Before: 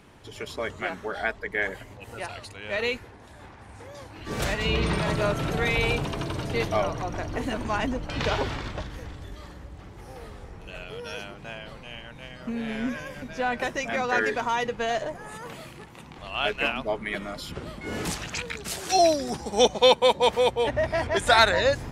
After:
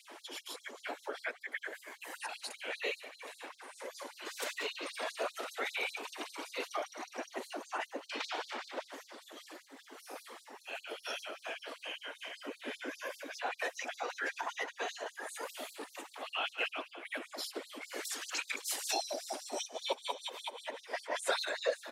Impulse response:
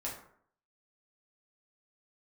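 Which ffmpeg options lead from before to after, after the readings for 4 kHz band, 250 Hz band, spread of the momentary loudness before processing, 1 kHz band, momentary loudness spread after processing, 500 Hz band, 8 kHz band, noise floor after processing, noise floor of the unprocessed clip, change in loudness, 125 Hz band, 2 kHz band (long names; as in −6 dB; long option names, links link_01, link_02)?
−10.5 dB, −18.0 dB, 21 LU, −13.5 dB, 12 LU, −15.5 dB, −5.5 dB, −62 dBFS, −46 dBFS, −13.5 dB, below −40 dB, −10.5 dB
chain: -filter_complex "[0:a]asplit=2[link_01][link_02];[link_02]aecho=0:1:144|288|432|576:0.112|0.0583|0.0303|0.0158[link_03];[link_01][link_03]amix=inputs=2:normalize=0,aphaser=in_gain=1:out_gain=1:delay=2:decay=0.3:speed=0.12:type=sinusoidal,acompressor=threshold=-39dB:ratio=2.5,afftfilt=real='hypot(re,im)*cos(2*PI*random(0))':imag='hypot(re,im)*sin(2*PI*random(1))':win_size=512:overlap=0.75,asplit=2[link_04][link_05];[link_05]aecho=0:1:526:0.133[link_06];[link_04][link_06]amix=inputs=2:normalize=0,crystalizer=i=0.5:c=0,afftfilt=real='re*gte(b*sr/1024,220*pow(4000/220,0.5+0.5*sin(2*PI*5.1*pts/sr)))':imag='im*gte(b*sr/1024,220*pow(4000/220,0.5+0.5*sin(2*PI*5.1*pts/sr)))':win_size=1024:overlap=0.75,volume=7.5dB"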